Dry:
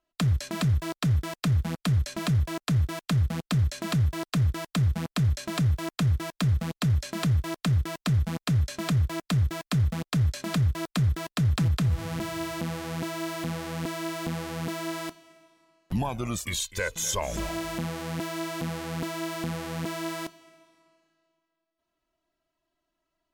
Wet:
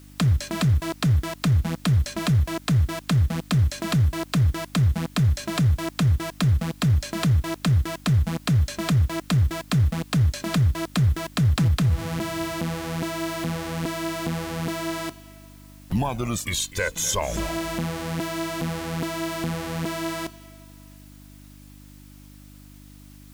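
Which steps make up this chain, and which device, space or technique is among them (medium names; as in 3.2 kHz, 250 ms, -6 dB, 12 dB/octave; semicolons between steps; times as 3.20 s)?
video cassette with head-switching buzz (mains buzz 50 Hz, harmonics 6, -51 dBFS -3 dB/octave; white noise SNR 32 dB); trim +4 dB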